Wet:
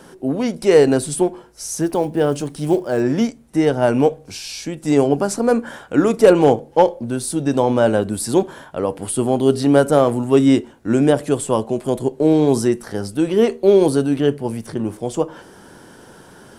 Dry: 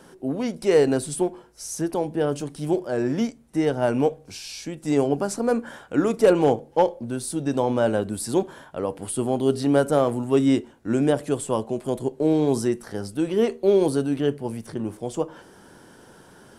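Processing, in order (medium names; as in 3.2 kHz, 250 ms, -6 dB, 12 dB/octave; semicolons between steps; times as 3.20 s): 1.82–3.01 s: block-companded coder 7-bit; trim +6 dB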